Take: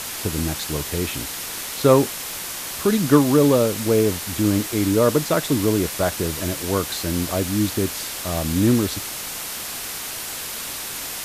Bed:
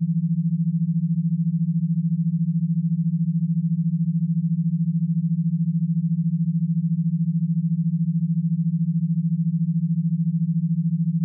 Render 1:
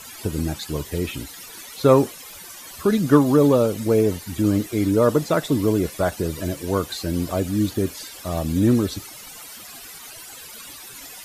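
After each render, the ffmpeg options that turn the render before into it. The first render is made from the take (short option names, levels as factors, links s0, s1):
-af "afftdn=nr=15:nf=-31"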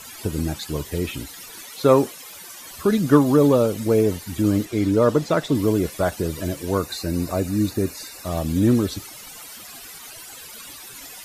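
-filter_complex "[0:a]asettb=1/sr,asplit=3[s0][s1][s2];[s0]atrim=end=1.654[s3];[s1]atrim=start=1.65:end=2.6,asetpts=PTS-STARTPTS,afade=t=in:d=0.004:c=qsin,afade=t=out:st=0.946:d=0.004:c=qsin,highpass=f=150:p=1[s4];[s2]atrim=start=2.596[s5];[s3][s4]acrossfade=d=0.004:c1=hsin:c2=qsin[s6];[s6][s5]acrossfade=d=0.004:c1=qsin:c2=hsin,asettb=1/sr,asplit=3[s7][s8][s9];[s7]atrim=end=4.654[s10];[s8]atrim=start=4.65:end=5.55,asetpts=PTS-STARTPTS,afade=t=in:d=0.004:c=qsin,afade=t=out:st=0.896:d=0.004:c=qsin,acrossover=split=7300[s11][s12];[s12]acompressor=threshold=0.00398:ratio=4:attack=1:release=60[s13];[s11][s13]amix=inputs=2:normalize=0[s14];[s9]atrim=start=5.546[s15];[s10][s14]acrossfade=d=0.004:c1=hsin:c2=qsin[s16];[s16][s15]acrossfade=d=0.004:c1=qsin:c2=hsin,asettb=1/sr,asplit=3[s17][s18][s19];[s17]atrim=end=6.774[s20];[s18]atrim=start=6.77:end=8.25,asetpts=PTS-STARTPTS,afade=t=in:d=0.004:c=qsin,afade=t=out:st=1.476:d=0.004:c=qsin,asuperstop=centerf=3200:order=8:qfactor=5.4[s21];[s19]atrim=start=8.246[s22];[s20][s21]acrossfade=d=0.004:c1=hsin:c2=qsin[s23];[s23][s22]acrossfade=d=0.004:c1=qsin:c2=hsin"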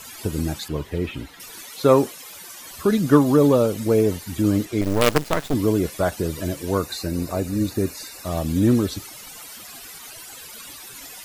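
-filter_complex "[0:a]asettb=1/sr,asplit=3[s0][s1][s2];[s0]atrim=end=0.684[s3];[s1]atrim=start=0.68:end=1.4,asetpts=PTS-STARTPTS,afade=t=in:d=0.004:c=qsin,afade=t=out:st=0.716:d=0.004:c=qsin,acrossover=split=3500[s4][s5];[s5]acompressor=threshold=0.00224:ratio=4:attack=1:release=60[s6];[s4][s6]amix=inputs=2:normalize=0[s7];[s2]atrim=start=1.396[s8];[s3][s7]acrossfade=d=0.004:c1=hsin:c2=qsin[s9];[s9][s8]acrossfade=d=0.004:c1=qsin:c2=hsin,asettb=1/sr,asplit=3[s10][s11][s12];[s10]atrim=end=4.814[s13];[s11]atrim=start=4.81:end=5.54,asetpts=PTS-STARTPTS,afade=t=in:d=0.004:c=qsin,afade=t=out:st=0.726:d=0.004:c=qsin,acrusher=bits=3:dc=4:mix=0:aa=0.000001[s14];[s12]atrim=start=5.536[s15];[s13][s14]acrossfade=d=0.004:c1=hsin:c2=qsin[s16];[s16][s15]acrossfade=d=0.004:c1=qsin:c2=hsin,asettb=1/sr,asplit=3[s17][s18][s19];[s17]atrim=end=7.074[s20];[s18]atrim=start=7.07:end=7.71,asetpts=PTS-STARTPTS,afade=t=in:d=0.004:c=qsin,afade=t=out:st=0.636:d=0.004:c=qsin,tremolo=f=230:d=0.333[s21];[s19]atrim=start=7.706[s22];[s20][s21]acrossfade=d=0.004:c1=hsin:c2=qsin[s23];[s23][s22]acrossfade=d=0.004:c1=qsin:c2=hsin"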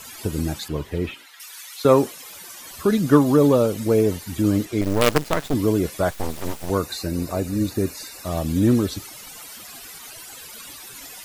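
-filter_complex "[0:a]asettb=1/sr,asplit=3[s0][s1][s2];[s0]atrim=end=1.144[s3];[s1]atrim=start=1.14:end=1.85,asetpts=PTS-STARTPTS,afade=t=in:d=0.004:c=qsin,afade=t=out:st=0.706:d=0.004:c=qsin,highpass=1200[s4];[s2]atrim=start=1.846[s5];[s3][s4]acrossfade=d=0.004:c1=hsin:c2=qsin[s6];[s6][s5]acrossfade=d=0.004:c1=qsin:c2=hsin,asettb=1/sr,asplit=3[s7][s8][s9];[s7]atrim=end=6.104[s10];[s8]atrim=start=6.1:end=6.7,asetpts=PTS-STARTPTS,afade=t=in:d=0.004:c=qsin,afade=t=out:st=0.596:d=0.004:c=qsin,aeval=exprs='abs(val(0))':c=same[s11];[s9]atrim=start=6.696[s12];[s10][s11]acrossfade=d=0.004:c1=hsin:c2=qsin[s13];[s13][s12]acrossfade=d=0.004:c1=qsin:c2=hsin"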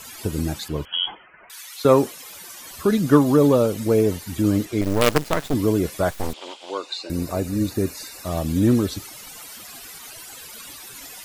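-filter_complex "[0:a]asettb=1/sr,asplit=3[s0][s1][s2];[s0]atrim=end=0.854[s3];[s1]atrim=start=0.85:end=1.5,asetpts=PTS-STARTPTS,afade=t=in:d=0.004:c=qsin,afade=t=out:st=0.646:d=0.004:c=qsin,lowpass=f=2900:t=q:w=0.5098,lowpass=f=2900:t=q:w=0.6013,lowpass=f=2900:t=q:w=0.9,lowpass=f=2900:t=q:w=2.563,afreqshift=-3400[s4];[s2]atrim=start=1.496[s5];[s3][s4]acrossfade=d=0.004:c1=hsin:c2=qsin[s6];[s6][s5]acrossfade=d=0.004:c1=qsin:c2=hsin,asettb=1/sr,asplit=3[s7][s8][s9];[s7]atrim=end=6.334[s10];[s8]atrim=start=6.33:end=7.1,asetpts=PTS-STARTPTS,afade=t=in:d=0.004:c=qsin,afade=t=out:st=0.766:d=0.004:c=qsin,highpass=f=390:w=0.5412,highpass=f=390:w=1.3066,equalizer=f=440:t=q:w=4:g=-7,equalizer=f=670:t=q:w=4:g=-5,equalizer=f=1300:t=q:w=4:g=-5,equalizer=f=1800:t=q:w=4:g=-10,equalizer=f=3200:t=q:w=4:g=10,equalizer=f=5900:t=q:w=4:g=-7,lowpass=f=6500:w=0.5412,lowpass=f=6500:w=1.3066[s11];[s9]atrim=start=7.096[s12];[s10][s11]acrossfade=d=0.004:c1=hsin:c2=qsin[s13];[s13][s12]acrossfade=d=0.004:c1=qsin:c2=hsin"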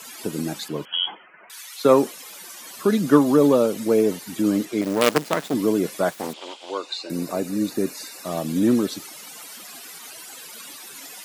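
-af "highpass=f=170:w=0.5412,highpass=f=170:w=1.3066,equalizer=f=14000:w=4.4:g=-3.5"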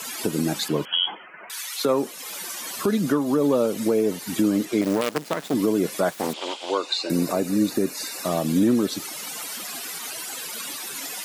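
-filter_complex "[0:a]asplit=2[s0][s1];[s1]acompressor=threshold=0.0501:ratio=6,volume=1.12[s2];[s0][s2]amix=inputs=2:normalize=0,alimiter=limit=0.266:level=0:latency=1:release=435"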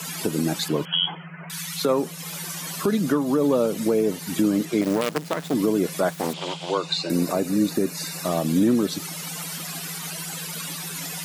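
-filter_complex "[1:a]volume=0.112[s0];[0:a][s0]amix=inputs=2:normalize=0"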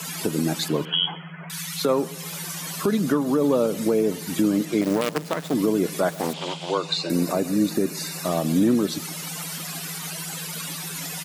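-filter_complex "[0:a]asplit=2[s0][s1];[s1]adelay=132,lowpass=f=2900:p=1,volume=0.1,asplit=2[s2][s3];[s3]adelay=132,lowpass=f=2900:p=1,volume=0.45,asplit=2[s4][s5];[s5]adelay=132,lowpass=f=2900:p=1,volume=0.45[s6];[s0][s2][s4][s6]amix=inputs=4:normalize=0"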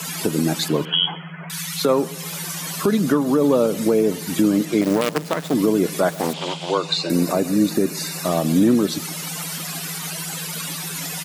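-af "volume=1.5"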